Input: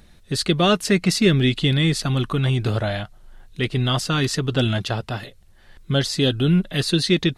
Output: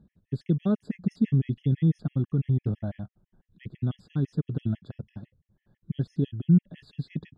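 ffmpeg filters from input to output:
ffmpeg -i in.wav -af "bandpass=frequency=170:width_type=q:width=1.4:csg=0,afftfilt=real='re*gt(sin(2*PI*6*pts/sr)*(1-2*mod(floor(b*sr/1024/1700),2)),0)':imag='im*gt(sin(2*PI*6*pts/sr)*(1-2*mod(floor(b*sr/1024/1700),2)),0)':win_size=1024:overlap=0.75" out.wav

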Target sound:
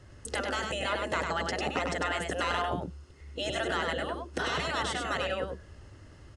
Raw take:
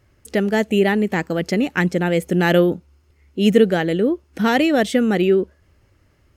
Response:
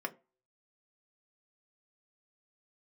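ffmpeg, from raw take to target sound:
-filter_complex "[0:a]bandreject=frequency=2300:width=5.9,afftfilt=real='re*lt(hypot(re,im),0.2)':imag='im*lt(hypot(re,im),0.2)':win_size=1024:overlap=0.75,acrossover=split=380|1500[link_01][link_02][link_03];[link_03]acompressor=threshold=-42dB:ratio=6[link_04];[link_01][link_02][link_04]amix=inputs=3:normalize=0,asoftclip=type=tanh:threshold=-25dB,asplit=2[link_05][link_06];[link_06]aecho=0:1:99:0.596[link_07];[link_05][link_07]amix=inputs=2:normalize=0,aresample=22050,aresample=44100,volume=5.5dB"

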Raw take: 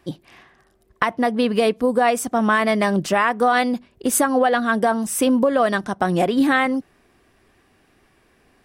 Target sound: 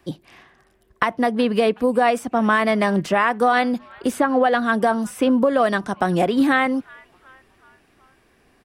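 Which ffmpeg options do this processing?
ffmpeg -i in.wav -filter_complex "[0:a]acrossover=split=330|980|3700[link_01][link_02][link_03][link_04];[link_03]asplit=5[link_05][link_06][link_07][link_08][link_09];[link_06]adelay=372,afreqshift=-130,volume=-22dB[link_10];[link_07]adelay=744,afreqshift=-260,volume=-26.6dB[link_11];[link_08]adelay=1116,afreqshift=-390,volume=-31.2dB[link_12];[link_09]adelay=1488,afreqshift=-520,volume=-35.7dB[link_13];[link_05][link_10][link_11][link_12][link_13]amix=inputs=5:normalize=0[link_14];[link_04]acompressor=threshold=-39dB:ratio=6[link_15];[link_01][link_02][link_14][link_15]amix=inputs=4:normalize=0" out.wav

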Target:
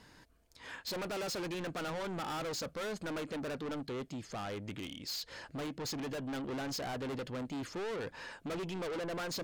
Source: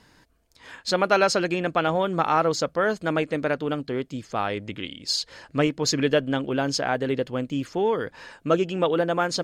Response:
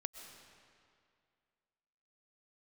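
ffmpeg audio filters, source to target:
-filter_complex "[0:a]volume=27dB,asoftclip=hard,volume=-27dB,asettb=1/sr,asplit=3[link_01][link_02][link_03];[link_01]atrim=end=4.104[link_04];[link_02]atrim=start=4.1:end=6.22,asetpts=PTS-STARTPTS,afade=type=in:duration=0.004:curve=qsin,afade=type=out:start_time=2.116:duration=0.004:curve=qsin,acompressor=threshold=-33dB:ratio=2.5[link_05];[link_03]atrim=start=6.216[link_06];[link_04][link_05]acrossfade=duration=0.004:curve1=hsin:curve2=qsin[link_07];[link_07][link_06]acrossfade=duration=0.004:curve1=qsin:curve2=hsin,asoftclip=type=tanh:threshold=-34dB,volume=-2.5dB"

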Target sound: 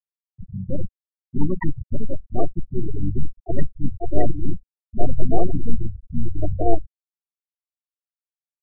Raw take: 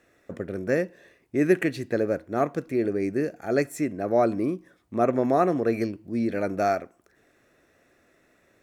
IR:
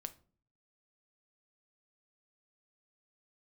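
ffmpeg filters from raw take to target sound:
-filter_complex "[0:a]volume=22.5dB,asoftclip=hard,volume=-22.5dB,asubboost=boost=8:cutoff=72,flanger=delay=6.9:depth=7.9:regen=-55:speed=0.28:shape=triangular,aecho=1:1:1.1:0.58,asplit=4[link_01][link_02][link_03][link_04];[link_02]adelay=109,afreqshift=-53,volume=-18.5dB[link_05];[link_03]adelay=218,afreqshift=-106,volume=-26.5dB[link_06];[link_04]adelay=327,afreqshift=-159,volume=-34.4dB[link_07];[link_01][link_05][link_06][link_07]amix=inputs=4:normalize=0,acompressor=mode=upward:threshold=-50dB:ratio=2.5,asplit=2[link_08][link_09];[1:a]atrim=start_sample=2205,asetrate=52920,aresample=44100[link_10];[link_09][link_10]afir=irnorm=-1:irlink=0,volume=10dB[link_11];[link_08][link_11]amix=inputs=2:normalize=0,asplit=4[link_12][link_13][link_14][link_15];[link_13]asetrate=22050,aresample=44100,atempo=2,volume=-2dB[link_16];[link_14]asetrate=29433,aresample=44100,atempo=1.49831,volume=-5dB[link_17];[link_15]asetrate=33038,aresample=44100,atempo=1.33484,volume=-16dB[link_18];[link_12][link_16][link_17][link_18]amix=inputs=4:normalize=0,afftfilt=real='re*gte(hypot(re,im),0.398)':imag='im*gte(hypot(re,im),0.398)':win_size=1024:overlap=0.75,volume=-3dB"

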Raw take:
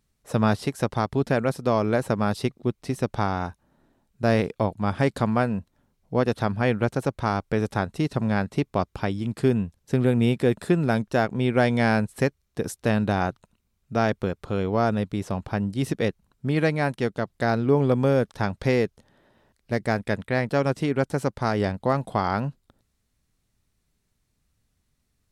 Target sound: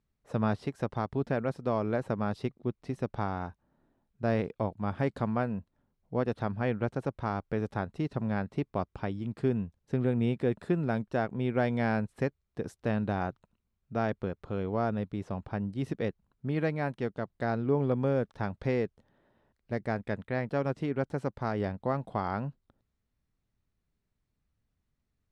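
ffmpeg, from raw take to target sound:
ffmpeg -i in.wav -af "aemphasis=mode=reproduction:type=75fm,volume=-8dB" out.wav

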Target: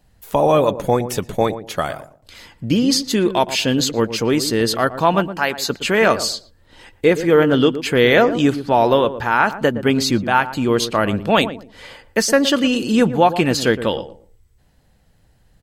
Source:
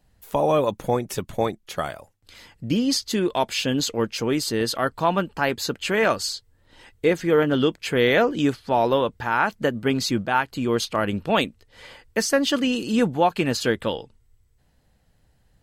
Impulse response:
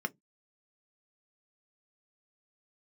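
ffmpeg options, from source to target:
-filter_complex "[0:a]asettb=1/sr,asplit=3[link_01][link_02][link_03];[link_01]atrim=end=5.284[link_04];[link_02]atrim=start=5.28:end=5.7,asetpts=PTS-STARTPTS,afade=type=in:duration=0.004:curve=qsin,afade=type=out:start_time=0.416:duration=0.004:curve=qsin,lowshelf=frequency=460:gain=-10.5[link_05];[link_03]atrim=start=5.696[link_06];[link_04][link_05]acrossfade=duration=0.004:curve1=hsin:curve2=qsin[link_07];[link_07][link_06]acrossfade=duration=0.004:curve1=qsin:curve2=hsin,asplit=2[link_08][link_09];[link_09]adelay=116,lowpass=frequency=820:poles=1,volume=-10.5dB,asplit=2[link_10][link_11];[link_11]adelay=116,lowpass=frequency=820:poles=1,volume=0.27,asplit=2[link_12][link_13];[link_13]adelay=116,lowpass=frequency=820:poles=1,volume=0.27[link_14];[link_08][link_10][link_12][link_14]amix=inputs=4:normalize=0,volume=5.5dB"

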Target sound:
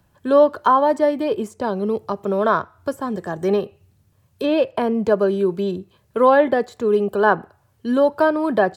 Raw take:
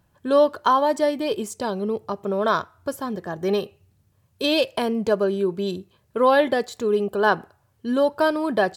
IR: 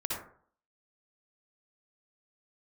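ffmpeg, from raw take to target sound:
-filter_complex "[0:a]asettb=1/sr,asplit=3[link_01][link_02][link_03];[link_01]atrim=end=2.944[link_04];[link_02]atrim=start=2.94:end=3.54,asetpts=PTS-STARTPTS,afade=type=in:duration=0.004:curve=qsin,afade=type=out:start_time=0.596:duration=0.004:curve=qsin,equalizer=frequency=7900:width_type=o:width=0.25:gain=11.5[link_05];[link_03]atrim=start=3.536[link_06];[link_04][link_05]acrossfade=duration=0.004:curve1=hsin:curve2=qsin[link_07];[link_07][link_06]acrossfade=duration=0.004:curve1=qsin:curve2=hsin,acrossover=split=230|580|2100[link_08][link_09][link_10][link_11];[link_11]acompressor=threshold=-48dB:ratio=6[link_12];[link_08][link_09][link_10][link_12]amix=inputs=4:normalize=0,volume=3.5dB"

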